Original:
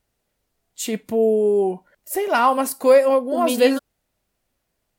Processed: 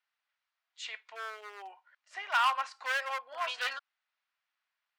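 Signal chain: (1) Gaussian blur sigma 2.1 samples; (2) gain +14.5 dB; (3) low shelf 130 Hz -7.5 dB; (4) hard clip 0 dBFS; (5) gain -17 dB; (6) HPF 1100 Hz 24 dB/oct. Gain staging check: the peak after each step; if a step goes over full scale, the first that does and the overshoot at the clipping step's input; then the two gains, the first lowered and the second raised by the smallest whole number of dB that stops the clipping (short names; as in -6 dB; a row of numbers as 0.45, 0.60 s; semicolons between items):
-5.0, +9.5, +8.5, 0.0, -17.0, -17.0 dBFS; step 2, 8.5 dB; step 2 +5.5 dB, step 5 -8 dB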